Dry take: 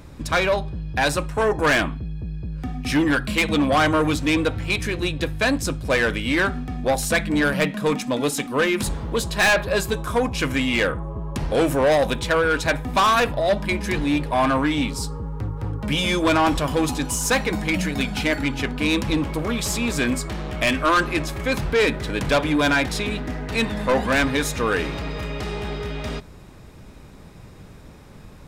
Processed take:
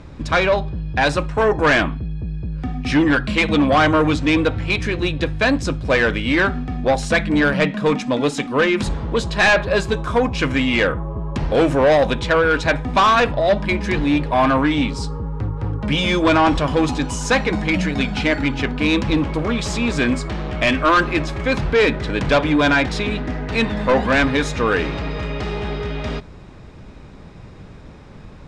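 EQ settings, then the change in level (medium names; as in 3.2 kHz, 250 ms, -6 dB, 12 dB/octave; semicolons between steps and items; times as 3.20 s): low-pass 11 kHz 12 dB/octave; distance through air 92 m; +4.0 dB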